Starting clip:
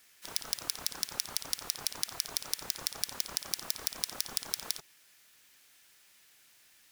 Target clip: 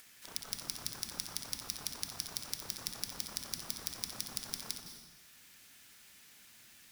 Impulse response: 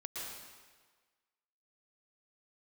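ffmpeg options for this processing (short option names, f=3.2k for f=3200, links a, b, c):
-filter_complex "[0:a]acompressor=mode=upward:threshold=-44dB:ratio=2.5,asplit=2[a][b];[b]lowshelf=f=340:t=q:w=1.5:g=13[c];[1:a]atrim=start_sample=2205,asetrate=52920,aresample=44100,adelay=66[d];[c][d]afir=irnorm=-1:irlink=0,volume=-3.5dB[e];[a][e]amix=inputs=2:normalize=0,volume=-6dB"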